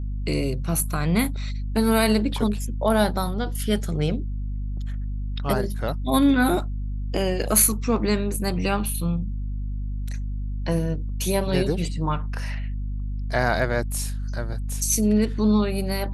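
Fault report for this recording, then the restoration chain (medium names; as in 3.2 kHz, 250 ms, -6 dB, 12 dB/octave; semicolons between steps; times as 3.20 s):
hum 50 Hz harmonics 5 -28 dBFS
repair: de-hum 50 Hz, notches 5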